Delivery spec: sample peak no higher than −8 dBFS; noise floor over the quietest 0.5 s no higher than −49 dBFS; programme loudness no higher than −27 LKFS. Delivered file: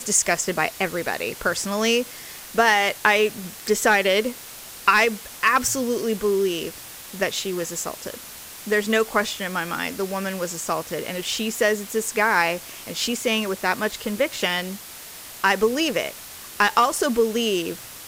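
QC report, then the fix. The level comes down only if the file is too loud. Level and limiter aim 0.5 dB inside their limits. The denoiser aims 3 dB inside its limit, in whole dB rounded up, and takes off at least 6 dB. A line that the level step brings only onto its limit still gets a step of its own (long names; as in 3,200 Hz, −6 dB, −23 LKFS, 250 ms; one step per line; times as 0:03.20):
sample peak −3.0 dBFS: out of spec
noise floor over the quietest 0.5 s −40 dBFS: out of spec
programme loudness −22.5 LKFS: out of spec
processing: broadband denoise 7 dB, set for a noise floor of −40 dBFS
level −5 dB
brickwall limiter −8.5 dBFS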